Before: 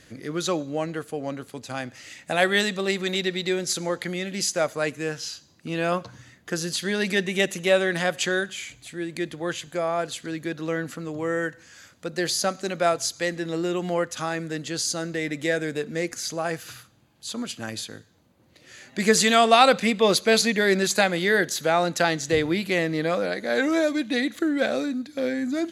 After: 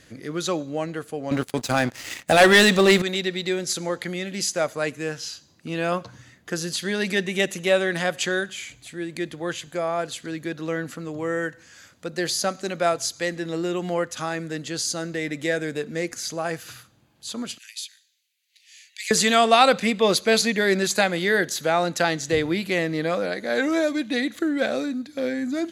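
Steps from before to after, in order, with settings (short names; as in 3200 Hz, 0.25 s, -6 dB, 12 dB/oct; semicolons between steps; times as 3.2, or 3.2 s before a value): 1.31–3.02 sample leveller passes 3; 17.58–19.11 steep high-pass 2200 Hz 36 dB/oct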